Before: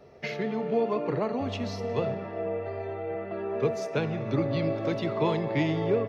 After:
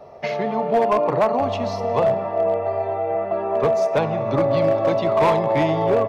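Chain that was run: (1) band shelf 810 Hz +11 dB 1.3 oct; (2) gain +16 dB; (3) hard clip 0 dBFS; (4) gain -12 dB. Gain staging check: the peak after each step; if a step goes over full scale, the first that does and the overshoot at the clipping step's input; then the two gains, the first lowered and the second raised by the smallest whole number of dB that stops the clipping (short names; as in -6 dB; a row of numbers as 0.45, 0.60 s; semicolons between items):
-6.5, +9.5, 0.0, -12.0 dBFS; step 2, 9.5 dB; step 2 +6 dB, step 4 -2 dB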